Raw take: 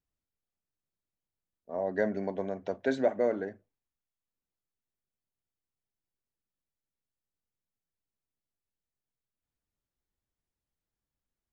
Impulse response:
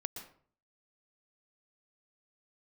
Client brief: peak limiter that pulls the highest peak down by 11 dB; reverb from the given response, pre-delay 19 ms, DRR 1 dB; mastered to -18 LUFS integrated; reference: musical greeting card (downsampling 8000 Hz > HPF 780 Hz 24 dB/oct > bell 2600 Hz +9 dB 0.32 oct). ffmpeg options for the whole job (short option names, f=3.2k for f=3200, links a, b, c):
-filter_complex "[0:a]alimiter=level_in=2dB:limit=-24dB:level=0:latency=1,volume=-2dB,asplit=2[a][b];[1:a]atrim=start_sample=2205,adelay=19[c];[b][c]afir=irnorm=-1:irlink=0,volume=0dB[d];[a][d]amix=inputs=2:normalize=0,aresample=8000,aresample=44100,highpass=f=780:w=0.5412,highpass=f=780:w=1.3066,equalizer=f=2.6k:t=o:w=0.32:g=9,volume=27dB"